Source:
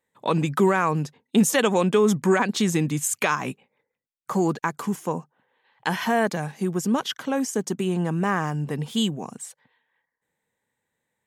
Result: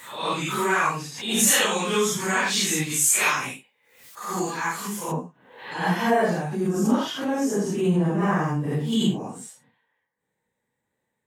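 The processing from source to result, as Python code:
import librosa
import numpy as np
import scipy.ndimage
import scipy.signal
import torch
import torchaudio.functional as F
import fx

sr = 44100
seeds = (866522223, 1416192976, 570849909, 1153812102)

y = fx.phase_scramble(x, sr, seeds[0], window_ms=200)
y = fx.tilt_shelf(y, sr, db=fx.steps((0.0, -8.0), (5.11, 3.0)), hz=1100.0)
y = fx.pre_swell(y, sr, db_per_s=78.0)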